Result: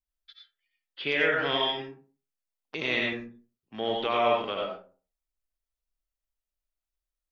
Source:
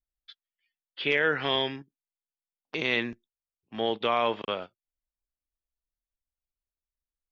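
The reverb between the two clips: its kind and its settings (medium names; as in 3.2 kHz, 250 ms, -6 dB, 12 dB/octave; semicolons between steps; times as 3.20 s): algorithmic reverb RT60 0.4 s, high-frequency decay 0.5×, pre-delay 50 ms, DRR -1 dB; trim -3 dB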